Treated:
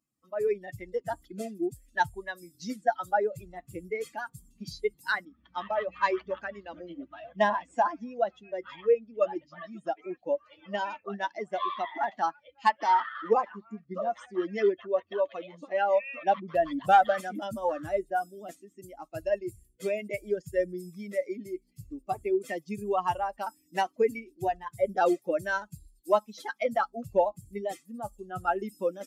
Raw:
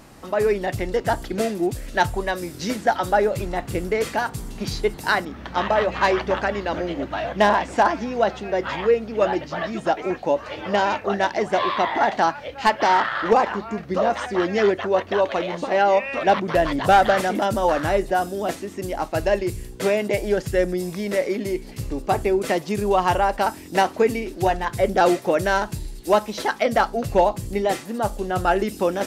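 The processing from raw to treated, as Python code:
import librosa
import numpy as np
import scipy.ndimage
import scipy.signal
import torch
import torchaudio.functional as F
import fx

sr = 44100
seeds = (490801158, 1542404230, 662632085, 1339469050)

y = fx.bin_expand(x, sr, power=2.0)
y = fx.highpass(y, sr, hz=410.0, slope=6)
y = fx.high_shelf(y, sr, hz=2100.0, db=-8.5)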